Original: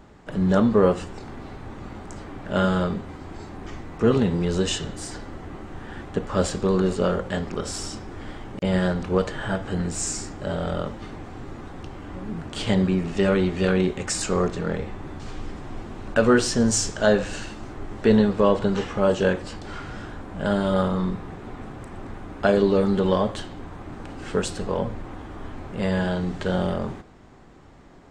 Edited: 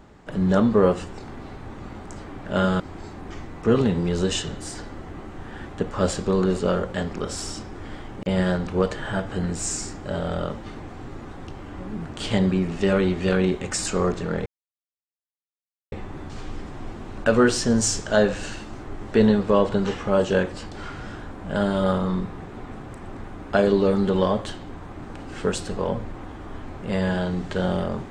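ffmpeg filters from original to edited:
-filter_complex "[0:a]asplit=3[a][b][c];[a]atrim=end=2.802[d];[b]atrim=start=3.158:end=14.82,asetpts=PTS-STARTPTS,afade=t=out:st=11.658:d=0.004:c=hsin,apad=pad_dur=1.46[e];[c]atrim=start=14.82,asetpts=PTS-STARTPTS,afade=t=in:d=0.004:c=hsin[f];[e][f]concat=n=2:v=0:a=1[g];[d][g]acrossfade=d=0.004:c1=hsin:c2=hsin"

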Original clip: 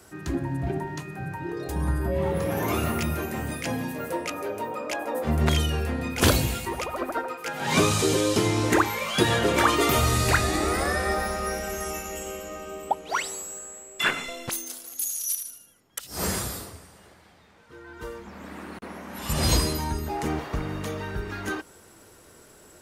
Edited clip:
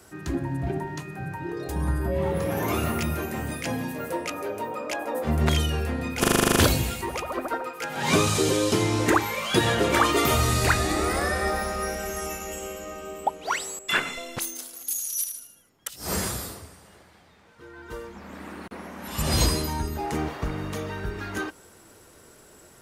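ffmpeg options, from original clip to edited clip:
-filter_complex "[0:a]asplit=11[a][b][c][d][e][f][g][h][i][j][k];[a]atrim=end=6.242[l];[b]atrim=start=6.198:end=6.242[m];[c]atrim=start=6.198:end=6.242[n];[d]atrim=start=6.198:end=6.242[o];[e]atrim=start=6.198:end=6.242[p];[f]atrim=start=6.198:end=6.242[q];[g]atrim=start=6.198:end=6.242[r];[h]atrim=start=6.198:end=6.242[s];[i]atrim=start=6.198:end=6.242[t];[j]atrim=start=6.198:end=13.432[u];[k]atrim=start=13.898[v];[l][m]acrossfade=d=0.004:c1=hsin:c2=hsin[w];[w][n]acrossfade=d=0.004:c1=hsin:c2=hsin[x];[x][o]acrossfade=d=0.004:c1=hsin:c2=hsin[y];[y][p]acrossfade=d=0.004:c1=hsin:c2=hsin[z];[z][q]acrossfade=d=0.004:c1=hsin:c2=hsin[aa];[aa][r]acrossfade=d=0.004:c1=hsin:c2=hsin[ab];[ab][s]acrossfade=d=0.004:c1=hsin:c2=hsin[ac];[ac][t]acrossfade=d=0.004:c1=hsin:c2=hsin[ad];[ad][u]acrossfade=d=0.004:c1=hsin:c2=hsin[ae];[ae][v]acrossfade=d=0.004:c1=hsin:c2=hsin"

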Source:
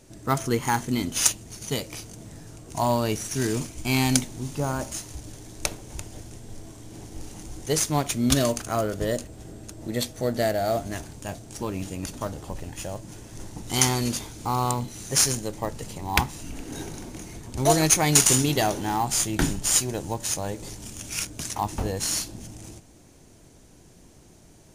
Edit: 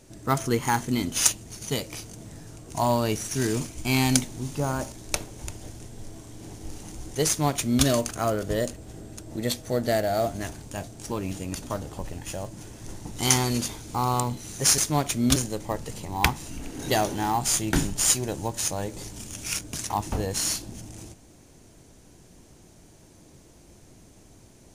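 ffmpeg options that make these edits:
-filter_complex "[0:a]asplit=5[a][b][c][d][e];[a]atrim=end=4.922[f];[b]atrim=start=5.428:end=15.292[g];[c]atrim=start=7.778:end=8.362[h];[d]atrim=start=15.288:end=16.812[i];[e]atrim=start=18.538[j];[f][g]acrossfade=d=0.004:c1=hsin:c2=hsin[k];[k][h]acrossfade=d=0.004:c1=hsin:c2=hsin[l];[l][i]acrossfade=d=0.004:c1=hsin:c2=hsin[m];[m][j]acrossfade=d=0.004:c1=hsin:c2=hsin"

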